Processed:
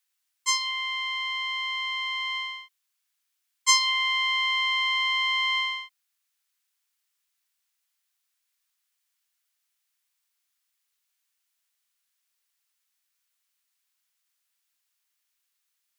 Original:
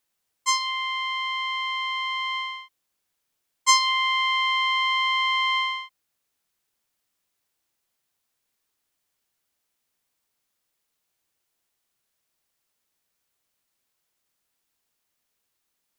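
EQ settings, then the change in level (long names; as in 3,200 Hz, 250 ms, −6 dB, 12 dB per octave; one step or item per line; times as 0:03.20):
high-pass filter 1,400 Hz 12 dB per octave
0.0 dB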